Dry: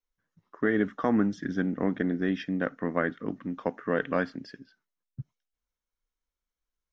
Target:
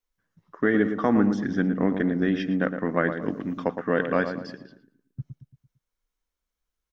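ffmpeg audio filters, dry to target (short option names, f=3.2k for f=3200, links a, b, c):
-filter_complex "[0:a]asettb=1/sr,asplit=3[a][b][c];[a]atrim=end=3.224[d];[b]atrim=start=3.22:end=3.64,asetpts=PTS-STARTPTS,afade=t=in:d=0.004:c=qsin,afade=t=out:st=0.416:d=0.004:c=qsin,highshelf=f=3k:g=9[e];[c]atrim=start=3.636[f];[d][e]acrossfade=d=0.004:c1=hsin:c2=qsin[g];[g][f]acrossfade=d=0.004:c1=qsin:c2=hsin,asplit=2[h][i];[i]adelay=113,lowpass=f=1.5k:p=1,volume=-7.5dB,asplit=2[j][k];[k]adelay=113,lowpass=f=1.5k:p=1,volume=0.45,asplit=2[l][m];[m]adelay=113,lowpass=f=1.5k:p=1,volume=0.45,asplit=2[n][o];[o]adelay=113,lowpass=f=1.5k:p=1,volume=0.45,asplit=2[p][q];[q]adelay=113,lowpass=f=1.5k:p=1,volume=0.45[r];[h][j][l][n][p][r]amix=inputs=6:normalize=0,volume=3.5dB"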